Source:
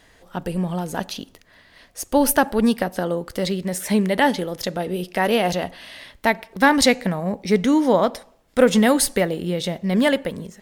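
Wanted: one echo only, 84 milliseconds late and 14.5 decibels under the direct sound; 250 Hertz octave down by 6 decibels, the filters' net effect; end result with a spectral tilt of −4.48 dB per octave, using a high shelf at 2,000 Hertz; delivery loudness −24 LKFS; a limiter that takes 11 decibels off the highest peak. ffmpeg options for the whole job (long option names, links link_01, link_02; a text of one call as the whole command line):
ffmpeg -i in.wav -af "equalizer=frequency=250:width_type=o:gain=-7.5,highshelf=frequency=2000:gain=-3.5,alimiter=limit=-15.5dB:level=0:latency=1,aecho=1:1:84:0.188,volume=3.5dB" out.wav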